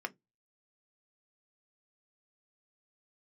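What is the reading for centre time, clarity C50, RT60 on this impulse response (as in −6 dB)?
3 ms, 27.0 dB, 0.15 s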